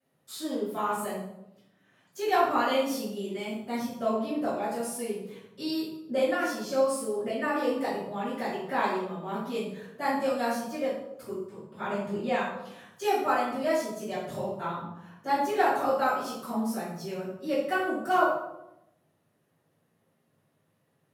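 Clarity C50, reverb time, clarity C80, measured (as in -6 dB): 1.5 dB, 0.85 s, 5.5 dB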